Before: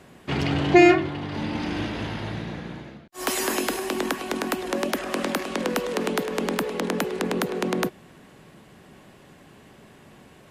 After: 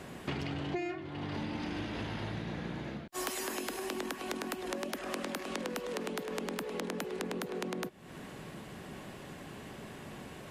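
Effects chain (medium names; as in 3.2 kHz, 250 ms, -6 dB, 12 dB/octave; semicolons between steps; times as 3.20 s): compression 10:1, threshold -38 dBFS, peak gain reduction 27 dB; trim +3.5 dB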